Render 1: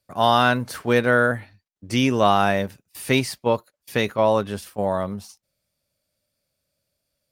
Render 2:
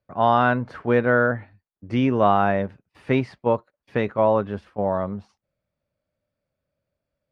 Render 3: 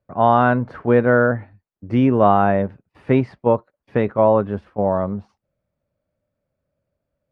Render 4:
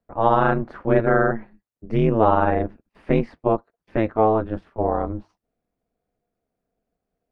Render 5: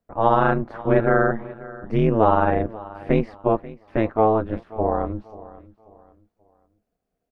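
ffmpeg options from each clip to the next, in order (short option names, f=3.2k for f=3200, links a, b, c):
-af "lowpass=1.7k"
-af "highshelf=f=2.1k:g=-12,volume=5dB"
-af "aeval=exprs='val(0)*sin(2*PI*110*n/s)':c=same"
-af "aecho=1:1:536|1072|1608:0.112|0.0359|0.0115"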